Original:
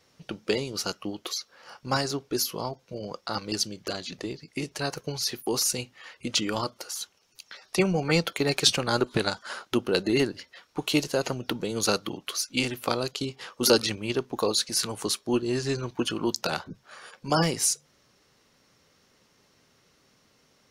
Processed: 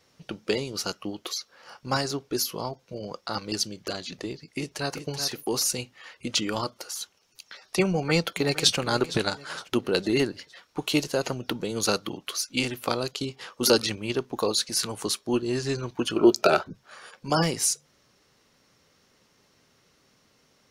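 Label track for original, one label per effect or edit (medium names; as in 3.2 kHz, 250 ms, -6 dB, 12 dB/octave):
4.390000	5.060000	echo throw 380 ms, feedback 15%, level -8.5 dB
7.900000	8.770000	echo throw 460 ms, feedback 45%, level -15.5 dB
16.160000	16.630000	small resonant body resonances 400/620/1300/2400 Hz, height 16 dB, ringing for 35 ms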